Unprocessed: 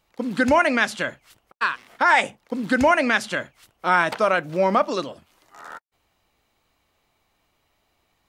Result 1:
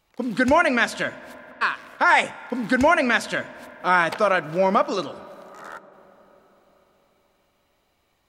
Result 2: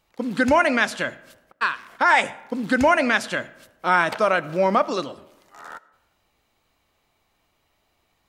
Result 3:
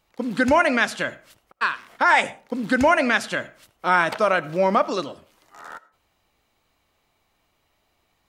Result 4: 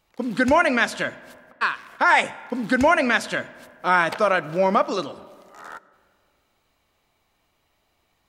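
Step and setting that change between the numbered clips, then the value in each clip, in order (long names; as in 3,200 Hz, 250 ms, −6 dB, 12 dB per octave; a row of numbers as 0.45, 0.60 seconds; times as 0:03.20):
comb and all-pass reverb, RT60: 4.8, 1, 0.42, 2.1 seconds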